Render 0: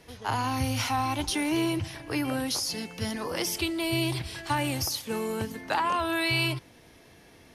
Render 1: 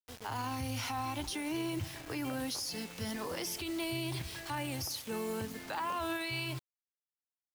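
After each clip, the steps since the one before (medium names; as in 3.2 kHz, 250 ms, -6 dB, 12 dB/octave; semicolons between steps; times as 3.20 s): bit crusher 7-bit; peak limiter -23 dBFS, peak gain reduction 8 dB; trim -5.5 dB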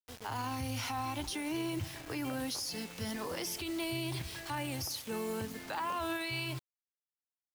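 no audible change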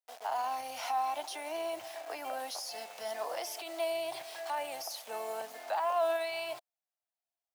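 resonant high-pass 680 Hz, resonance Q 6.8; trim -3 dB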